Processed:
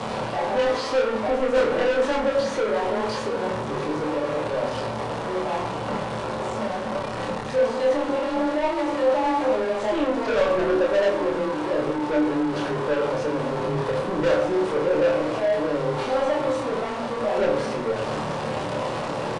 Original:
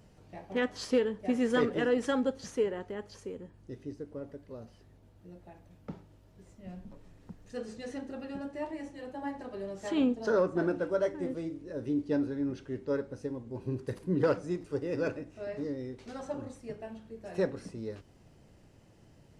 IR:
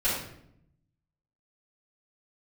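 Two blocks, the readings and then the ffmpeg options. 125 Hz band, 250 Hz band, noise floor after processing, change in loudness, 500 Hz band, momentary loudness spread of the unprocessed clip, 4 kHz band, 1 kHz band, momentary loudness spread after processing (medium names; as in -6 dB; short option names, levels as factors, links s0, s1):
+8.0 dB, +6.5 dB, -29 dBFS, +9.5 dB, +12.0 dB, 19 LU, +13.0 dB, +18.0 dB, 7 LU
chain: -filter_complex "[0:a]aeval=exprs='val(0)+0.5*0.0266*sgn(val(0))':c=same,highpass=80,bandreject=f=60:t=h:w=6,bandreject=f=120:t=h:w=6,bandreject=f=180:t=h:w=6,bandreject=f=240:t=h:w=6,bandreject=f=300:t=h:w=6,bandreject=f=360:t=h:w=6,bandreject=f=420:t=h:w=6,bandreject=f=480:t=h:w=6,bandreject=f=540:t=h:w=6,acrossover=split=3900[s0][s1];[s1]acompressor=threshold=0.00355:ratio=4:attack=1:release=60[s2];[s0][s2]amix=inputs=2:normalize=0,equalizer=f=500:t=o:w=1:g=8,equalizer=f=1000:t=o:w=1:g=10,equalizer=f=4000:t=o:w=1:g=4,areverse,acompressor=mode=upward:threshold=0.0562:ratio=2.5,areverse,afreqshift=18,asoftclip=type=tanh:threshold=0.0596,asplit=2[s3][s4];[s4]adelay=27,volume=0.708[s5];[s3][s5]amix=inputs=2:normalize=0,aresample=22050,aresample=44100,asplit=2[s6][s7];[1:a]atrim=start_sample=2205,afade=t=out:st=0.34:d=0.01,atrim=end_sample=15435[s8];[s7][s8]afir=irnorm=-1:irlink=0,volume=0.2[s9];[s6][s9]amix=inputs=2:normalize=0,volume=1.12"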